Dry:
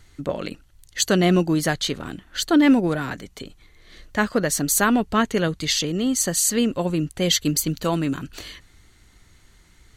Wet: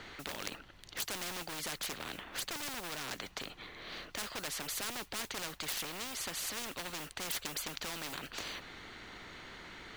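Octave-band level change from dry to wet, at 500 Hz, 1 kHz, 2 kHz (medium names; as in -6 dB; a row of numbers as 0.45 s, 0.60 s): -22.5 dB, -16.0 dB, -13.0 dB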